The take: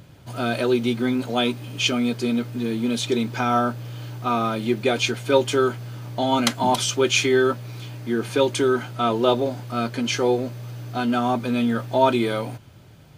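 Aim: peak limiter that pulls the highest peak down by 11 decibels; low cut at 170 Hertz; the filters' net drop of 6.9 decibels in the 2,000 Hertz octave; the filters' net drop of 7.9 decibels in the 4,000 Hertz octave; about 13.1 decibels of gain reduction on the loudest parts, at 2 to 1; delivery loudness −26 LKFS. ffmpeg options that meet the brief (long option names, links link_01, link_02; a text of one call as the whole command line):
ffmpeg -i in.wav -af "highpass=170,equalizer=frequency=2000:width_type=o:gain=-7.5,equalizer=frequency=4000:width_type=o:gain=-7.5,acompressor=threshold=-39dB:ratio=2,volume=13.5dB,alimiter=limit=-16.5dB:level=0:latency=1" out.wav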